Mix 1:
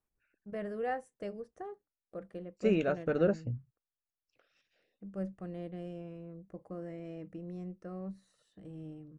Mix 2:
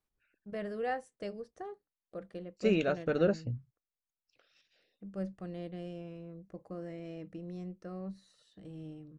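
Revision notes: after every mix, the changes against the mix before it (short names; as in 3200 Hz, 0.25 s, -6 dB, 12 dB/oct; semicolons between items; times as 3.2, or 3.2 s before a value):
master: add bell 4300 Hz +9 dB 1.2 oct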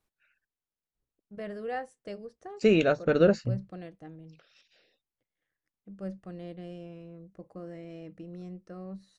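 first voice: entry +0.85 s; second voice +6.5 dB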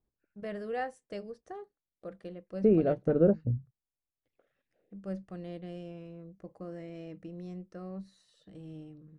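first voice: entry -0.95 s; second voice: add Bessel low-pass 510 Hz, order 2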